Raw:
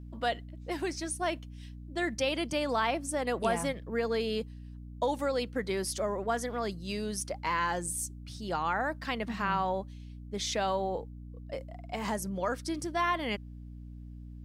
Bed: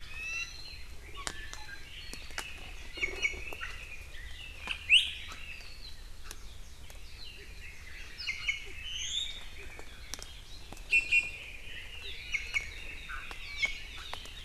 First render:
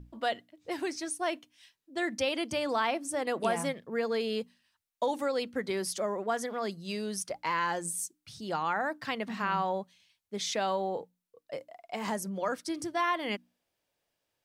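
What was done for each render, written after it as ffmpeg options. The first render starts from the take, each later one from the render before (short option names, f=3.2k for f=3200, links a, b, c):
-af "bandreject=f=60:t=h:w=6,bandreject=f=120:t=h:w=6,bandreject=f=180:t=h:w=6,bandreject=f=240:t=h:w=6,bandreject=f=300:t=h:w=6"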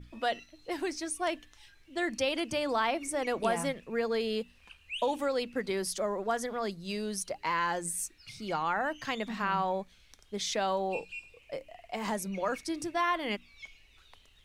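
-filter_complex "[1:a]volume=-16.5dB[a];[0:a][a]amix=inputs=2:normalize=0"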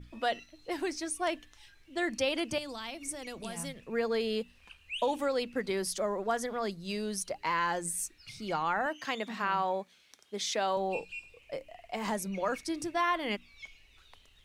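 -filter_complex "[0:a]asettb=1/sr,asplit=3[a][b][c];[a]atrim=end=2.584[d];[b]atrim=start=2.58:end=3.8,asetpts=PTS-STARTPTS,afade=t=in:d=0.004:c=qsin,afade=t=out:st=1.216:d=0.004:c=qsin,acrossover=split=190|3000[e][f][g];[f]acompressor=threshold=-46dB:ratio=3:attack=3.2:release=140:knee=2.83:detection=peak[h];[e][h][g]amix=inputs=3:normalize=0[i];[c]atrim=start=3.796[j];[d][i]acrossfade=d=0.004:c1=hsin:c2=qsin[k];[k][j]acrossfade=d=0.004:c1=qsin:c2=hsin,asettb=1/sr,asplit=3[l][m][n];[l]atrim=end=8.864[o];[m]atrim=start=8.86:end=10.77,asetpts=PTS-STARTPTS,afade=t=in:d=0.004:c=qsin,afade=t=out:st=1.906:d=0.004:c=qsin,highpass=230[p];[n]atrim=start=10.766[q];[o][p]acrossfade=d=0.004:c1=hsin:c2=qsin[r];[r][q]acrossfade=d=0.004:c1=qsin:c2=hsin"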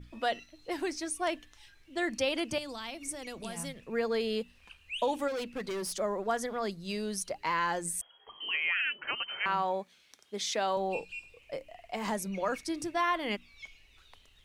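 -filter_complex "[0:a]asplit=3[a][b][c];[a]afade=t=out:st=5.27:d=0.02[d];[b]asoftclip=type=hard:threshold=-32.5dB,afade=t=in:st=5.27:d=0.02,afade=t=out:st=5.92:d=0.02[e];[c]afade=t=in:st=5.92:d=0.02[f];[d][e][f]amix=inputs=3:normalize=0,asettb=1/sr,asplit=3[g][h][i];[g]atrim=end=8.014[j];[h]atrim=start=8.01:end=9.46,asetpts=PTS-STARTPTS,afade=t=in:d=0.004:c=qsin,afade=t=out:st=1.446:d=0.004:c=qsin,lowpass=f=2.8k:t=q:w=0.5098,lowpass=f=2.8k:t=q:w=0.6013,lowpass=f=2.8k:t=q:w=0.9,lowpass=f=2.8k:t=q:w=2.563,afreqshift=-3300[k];[i]atrim=start=9.456[l];[j][k]acrossfade=d=0.004:c1=hsin:c2=qsin[m];[m][l]acrossfade=d=0.004:c1=qsin:c2=hsin"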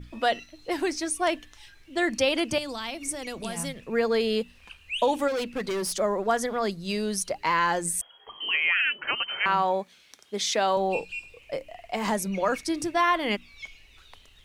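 -af "volume=6.5dB"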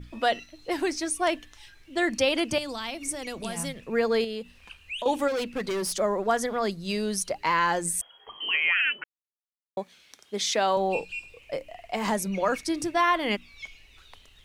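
-filter_complex "[0:a]asettb=1/sr,asplit=3[a][b][c];[a]atrim=end=4.244[d];[b]atrim=start=4.24:end=5.06,asetpts=PTS-STARTPTS,afade=t=in:d=0.004:c=qsin,afade=t=out:st=0.816:d=0.004:c=qsin,acompressor=threshold=-31dB:ratio=4:attack=3.2:release=140:knee=1:detection=peak[e];[c]atrim=start=5.056[f];[d][e]acrossfade=d=0.004:c1=hsin:c2=qsin[g];[g][f]acrossfade=d=0.004:c1=qsin:c2=hsin,asplit=3[h][i][j];[h]atrim=end=9.04,asetpts=PTS-STARTPTS,afade=t=out:st=9.036:d=0.004:c=hsin[k];[i]atrim=start=9.04:end=9.77,asetpts=PTS-STARTPTS,volume=0[l];[j]atrim=start=9.77,asetpts=PTS-STARTPTS,afade=t=in:d=0.004:c=hsin[m];[k][l][m]concat=n=3:v=0:a=1"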